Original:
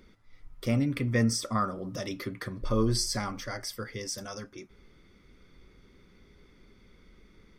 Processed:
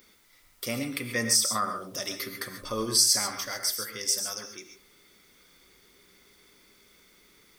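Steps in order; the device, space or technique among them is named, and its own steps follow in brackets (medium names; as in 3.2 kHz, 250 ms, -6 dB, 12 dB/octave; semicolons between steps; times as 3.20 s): turntable without a phono preamp (RIAA curve recording; white noise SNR 33 dB); gated-style reverb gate 160 ms rising, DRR 6.5 dB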